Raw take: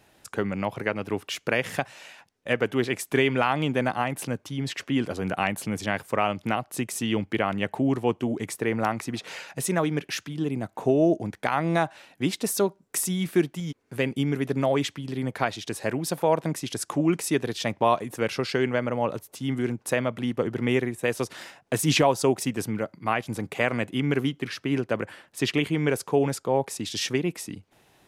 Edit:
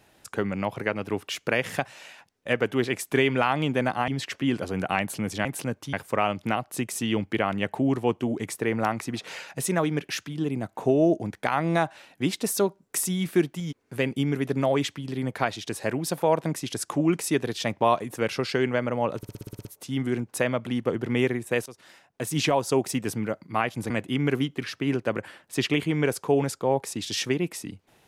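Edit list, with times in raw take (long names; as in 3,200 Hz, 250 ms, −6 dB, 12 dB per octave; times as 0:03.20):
0:04.08–0:04.56: move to 0:05.93
0:19.17: stutter 0.06 s, 9 plays
0:21.18–0:22.46: fade in, from −17.5 dB
0:23.42–0:23.74: remove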